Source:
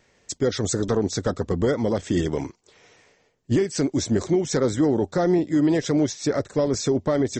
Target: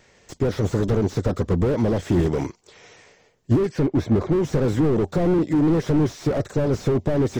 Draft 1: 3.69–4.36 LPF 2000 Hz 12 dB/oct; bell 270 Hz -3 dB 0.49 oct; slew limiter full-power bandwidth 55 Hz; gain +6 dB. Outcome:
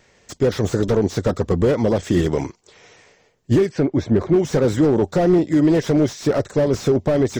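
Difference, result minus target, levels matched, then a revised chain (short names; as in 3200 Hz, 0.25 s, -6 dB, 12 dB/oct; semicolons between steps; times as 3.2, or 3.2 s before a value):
slew limiter: distortion -11 dB
3.69–4.36 LPF 2000 Hz 12 dB/oct; bell 270 Hz -3 dB 0.49 oct; slew limiter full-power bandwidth 23.5 Hz; gain +6 dB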